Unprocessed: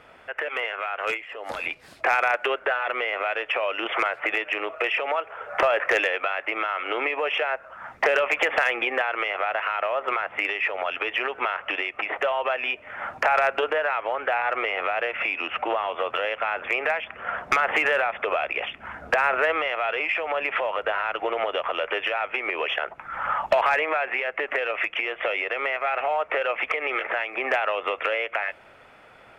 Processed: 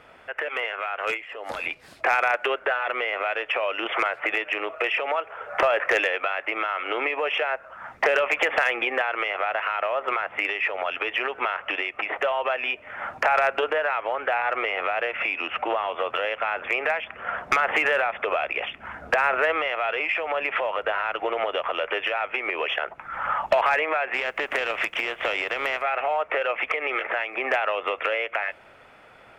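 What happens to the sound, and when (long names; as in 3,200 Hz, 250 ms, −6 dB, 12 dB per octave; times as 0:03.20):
0:24.13–0:25.81: compressing power law on the bin magnitudes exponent 0.68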